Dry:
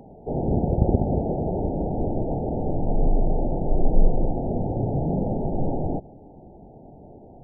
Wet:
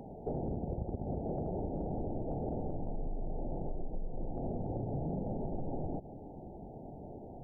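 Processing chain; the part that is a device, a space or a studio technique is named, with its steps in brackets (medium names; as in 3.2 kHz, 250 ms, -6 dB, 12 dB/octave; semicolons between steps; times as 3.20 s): serial compression, peaks first (compression, threshold -27 dBFS, peak gain reduction 16.5 dB; compression 2.5:1, threshold -33 dBFS, peak gain reduction 6.5 dB); trim -1.5 dB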